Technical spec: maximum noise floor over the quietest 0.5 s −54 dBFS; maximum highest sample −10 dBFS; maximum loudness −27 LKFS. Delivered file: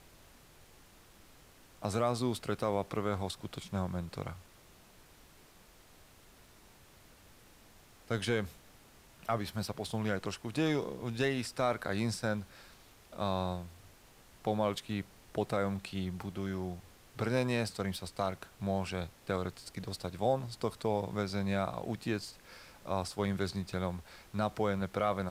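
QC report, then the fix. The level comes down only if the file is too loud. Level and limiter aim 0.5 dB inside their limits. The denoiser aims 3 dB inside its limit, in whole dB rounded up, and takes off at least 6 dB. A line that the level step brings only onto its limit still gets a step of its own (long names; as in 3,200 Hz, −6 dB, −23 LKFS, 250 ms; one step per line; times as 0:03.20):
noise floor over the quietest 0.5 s −59 dBFS: in spec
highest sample −19.0 dBFS: in spec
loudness −35.5 LKFS: in spec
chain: no processing needed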